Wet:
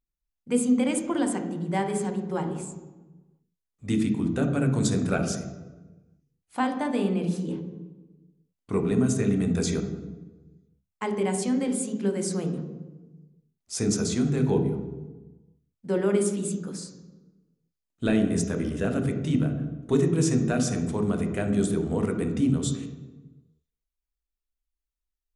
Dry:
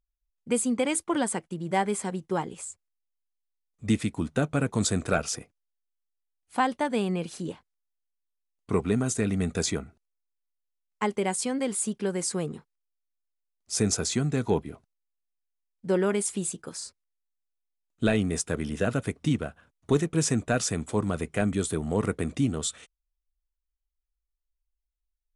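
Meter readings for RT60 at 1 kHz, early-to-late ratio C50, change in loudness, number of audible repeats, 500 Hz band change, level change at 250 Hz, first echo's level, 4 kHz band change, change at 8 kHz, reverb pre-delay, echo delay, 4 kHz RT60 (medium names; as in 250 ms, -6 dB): 1.1 s, 7.0 dB, +1.5 dB, no echo, +1.0 dB, +4.0 dB, no echo, -3.0 dB, -3.0 dB, 13 ms, no echo, 0.80 s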